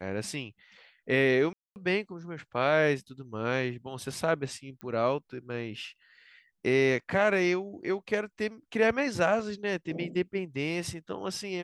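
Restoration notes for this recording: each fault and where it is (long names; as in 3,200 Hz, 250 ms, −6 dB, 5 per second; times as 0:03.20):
0:01.53–0:01.76: drop-out 229 ms
0:04.81: click −27 dBFS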